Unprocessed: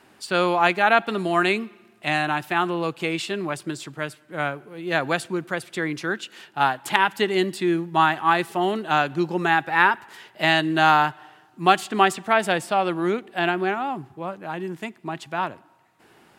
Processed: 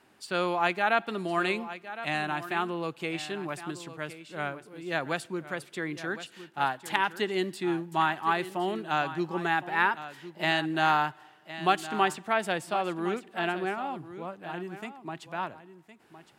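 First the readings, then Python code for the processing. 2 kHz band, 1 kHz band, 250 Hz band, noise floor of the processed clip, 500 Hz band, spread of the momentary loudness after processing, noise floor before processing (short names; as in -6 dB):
-7.5 dB, -7.5 dB, -7.5 dB, -57 dBFS, -7.5 dB, 12 LU, -56 dBFS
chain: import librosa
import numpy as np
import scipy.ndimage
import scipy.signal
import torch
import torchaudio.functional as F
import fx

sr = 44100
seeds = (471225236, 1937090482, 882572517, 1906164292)

y = x + 10.0 ** (-13.5 / 20.0) * np.pad(x, (int(1062 * sr / 1000.0), 0))[:len(x)]
y = F.gain(torch.from_numpy(y), -7.5).numpy()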